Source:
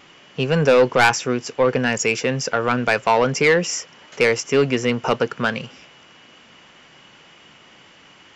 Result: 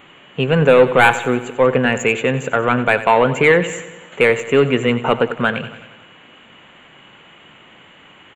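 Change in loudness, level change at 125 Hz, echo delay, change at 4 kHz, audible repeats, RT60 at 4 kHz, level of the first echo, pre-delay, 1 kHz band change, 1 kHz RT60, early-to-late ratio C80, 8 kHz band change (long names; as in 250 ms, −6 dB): +3.5 dB, +4.0 dB, 92 ms, 0.0 dB, 5, no reverb audible, −14.0 dB, no reverb audible, +3.5 dB, no reverb audible, no reverb audible, −6.5 dB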